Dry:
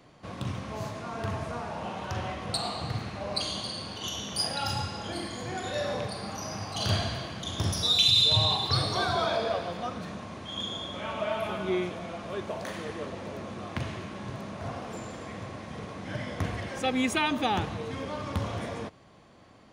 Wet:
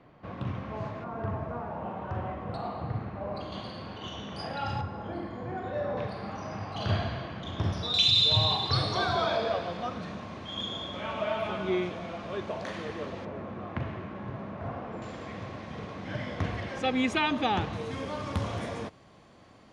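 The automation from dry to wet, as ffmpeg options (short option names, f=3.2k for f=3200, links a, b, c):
-af "asetnsamples=n=441:p=0,asendcmd='1.04 lowpass f 1300;3.52 lowpass f 2200;4.81 lowpass f 1300;5.97 lowpass f 2400;7.94 lowpass f 5100;13.25 lowpass f 1900;15.02 lowpass f 4800;17.73 lowpass f 11000',lowpass=2.2k"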